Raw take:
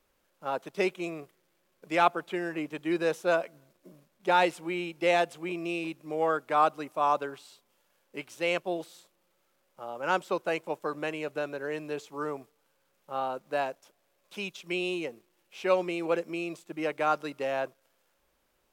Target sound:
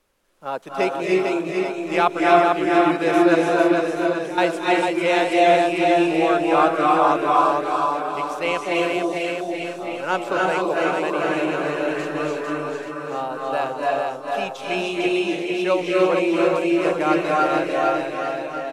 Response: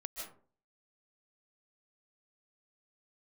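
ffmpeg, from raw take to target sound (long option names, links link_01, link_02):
-filter_complex "[0:a]asettb=1/sr,asplit=3[link_01][link_02][link_03];[link_01]atrim=end=3.354[link_04];[link_02]atrim=start=3.35:end=4.38,asetpts=PTS-STARTPTS,afade=type=in:duration=0.004:curve=qsin,afade=type=out:start_time=1.026:duration=0.004:curve=qsin,acompressor=threshold=-44dB:ratio=3[link_05];[link_03]atrim=start=4.376[link_06];[link_04][link_05]acrossfade=duration=0.004:curve1=hsin:curve2=qsin[link_07];[link_07][link_06]acrossfade=duration=0.004:curve1=qsin:curve2=hsin,aecho=1:1:450|832.5|1158|1434|1669:0.631|0.398|0.251|0.158|0.1[link_08];[1:a]atrim=start_sample=2205,asetrate=23373,aresample=44100[link_09];[link_08][link_09]afir=irnorm=-1:irlink=0,volume=5.5dB"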